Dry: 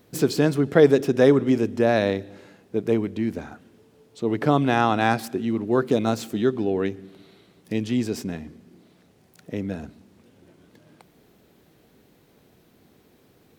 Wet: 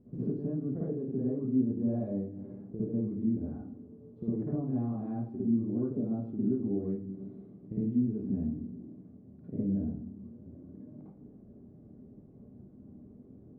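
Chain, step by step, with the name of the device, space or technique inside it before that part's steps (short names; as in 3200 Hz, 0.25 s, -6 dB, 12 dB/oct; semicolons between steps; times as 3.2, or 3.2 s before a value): television next door (compressor 5:1, threshold -35 dBFS, peak gain reduction 22 dB; LPF 260 Hz 12 dB/oct; reverb RT60 0.45 s, pre-delay 48 ms, DRR -8 dB)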